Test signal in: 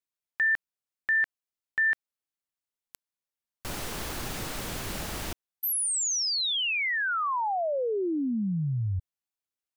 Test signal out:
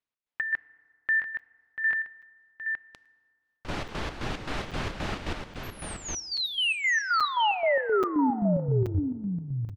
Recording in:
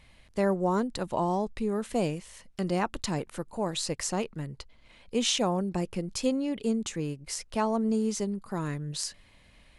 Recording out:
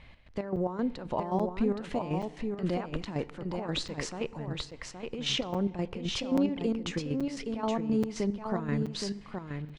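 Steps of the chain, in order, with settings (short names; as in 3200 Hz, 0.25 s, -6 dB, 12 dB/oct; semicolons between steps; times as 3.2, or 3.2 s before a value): LPF 3400 Hz 12 dB/oct; limiter -25 dBFS; chopper 3.8 Hz, depth 65%, duty 55%; echo 0.82 s -5.5 dB; FDN reverb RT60 1.9 s, low-frequency decay 1×, high-frequency decay 0.5×, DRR 18.5 dB; crackling interface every 0.83 s, samples 256, zero, from 0.56; gain +4.5 dB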